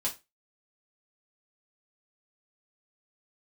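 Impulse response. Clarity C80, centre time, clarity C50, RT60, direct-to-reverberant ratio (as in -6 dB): 21.5 dB, 15 ms, 14.0 dB, 0.25 s, -5.5 dB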